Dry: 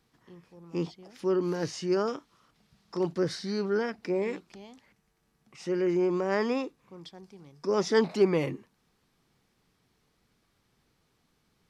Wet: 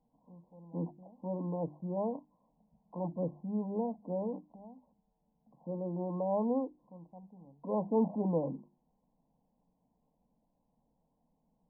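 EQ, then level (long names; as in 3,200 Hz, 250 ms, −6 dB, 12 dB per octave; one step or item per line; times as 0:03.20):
linear-phase brick-wall low-pass 1,100 Hz
mains-hum notches 50/100/150/200/250/300/350 Hz
phaser with its sweep stopped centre 380 Hz, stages 6
0.0 dB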